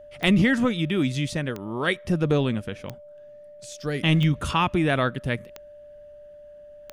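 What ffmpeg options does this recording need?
-af "adeclick=t=4,bandreject=f=590:w=30"

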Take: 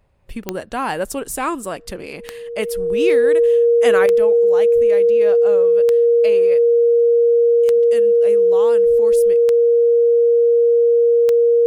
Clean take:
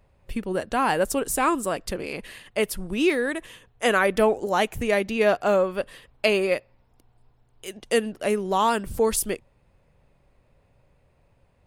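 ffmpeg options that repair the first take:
-af "adeclick=t=4,bandreject=f=470:w=30,asetnsamples=n=441:p=0,asendcmd='4.06 volume volume 9dB',volume=0dB"

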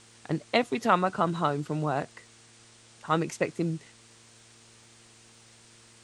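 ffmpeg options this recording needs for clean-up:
-af "adeclick=t=4,bandreject=f=114.5:t=h:w=4,bandreject=f=229:t=h:w=4,bandreject=f=343.5:t=h:w=4,bandreject=f=458:t=h:w=4,afwtdn=0.0022"

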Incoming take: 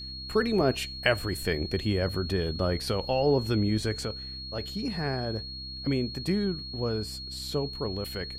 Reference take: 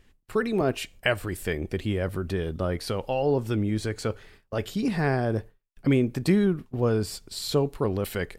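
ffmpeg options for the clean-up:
-af "bandreject=f=65:t=h:w=4,bandreject=f=130:t=h:w=4,bandreject=f=195:t=h:w=4,bandreject=f=260:t=h:w=4,bandreject=f=325:t=h:w=4,bandreject=f=4.3k:w=30,asetnsamples=n=441:p=0,asendcmd='4.05 volume volume 6.5dB',volume=0dB"

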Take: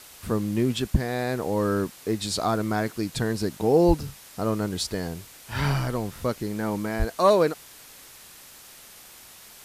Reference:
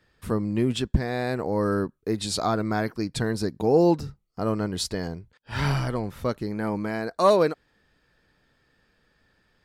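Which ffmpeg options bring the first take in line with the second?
-filter_complex "[0:a]asplit=3[a][b][c];[a]afade=t=out:st=3.87:d=0.02[d];[b]highpass=f=140:w=0.5412,highpass=f=140:w=1.3066,afade=t=in:st=3.87:d=0.02,afade=t=out:st=3.99:d=0.02[e];[c]afade=t=in:st=3.99:d=0.02[f];[d][e][f]amix=inputs=3:normalize=0,asplit=3[g][h][i];[g]afade=t=out:st=6.98:d=0.02[j];[h]highpass=f=140:w=0.5412,highpass=f=140:w=1.3066,afade=t=in:st=6.98:d=0.02,afade=t=out:st=7.1:d=0.02[k];[i]afade=t=in:st=7.1:d=0.02[l];[j][k][l]amix=inputs=3:normalize=0,afwtdn=0.005"

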